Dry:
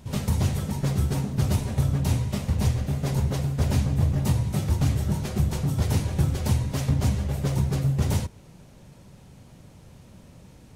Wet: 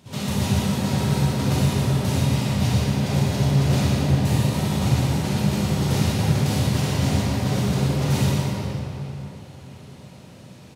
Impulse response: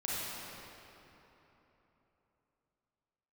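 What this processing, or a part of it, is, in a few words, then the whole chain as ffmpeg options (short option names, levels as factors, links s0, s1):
PA in a hall: -filter_complex "[0:a]highpass=130,equalizer=f=3600:t=o:w=1.6:g=5,aecho=1:1:121:0.473[s0];[1:a]atrim=start_sample=2205[s1];[s0][s1]afir=irnorm=-1:irlink=0"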